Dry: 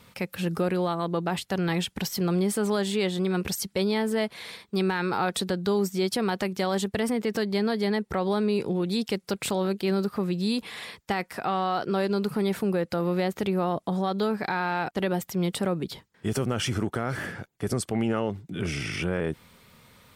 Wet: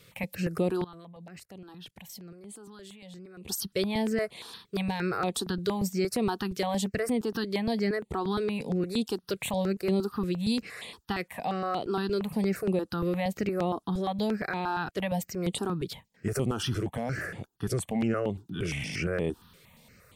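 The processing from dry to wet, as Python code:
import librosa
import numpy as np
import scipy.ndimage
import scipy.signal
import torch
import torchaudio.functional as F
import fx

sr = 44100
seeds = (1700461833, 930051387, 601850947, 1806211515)

y = fx.level_steps(x, sr, step_db=22, at=(0.84, 3.49))
y = fx.phaser_held(y, sr, hz=8.6, low_hz=230.0, high_hz=5400.0)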